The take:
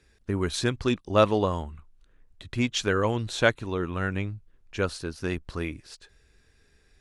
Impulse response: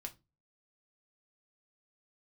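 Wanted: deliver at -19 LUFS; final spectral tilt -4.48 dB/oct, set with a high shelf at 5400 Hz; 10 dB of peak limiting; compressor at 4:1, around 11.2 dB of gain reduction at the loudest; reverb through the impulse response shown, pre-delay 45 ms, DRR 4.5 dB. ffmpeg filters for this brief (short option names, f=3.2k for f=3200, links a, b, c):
-filter_complex "[0:a]highshelf=f=5.4k:g=5,acompressor=threshold=-28dB:ratio=4,alimiter=level_in=1dB:limit=-24dB:level=0:latency=1,volume=-1dB,asplit=2[a][b];[1:a]atrim=start_sample=2205,adelay=45[c];[b][c]afir=irnorm=-1:irlink=0,volume=-1dB[d];[a][d]amix=inputs=2:normalize=0,volume=17dB"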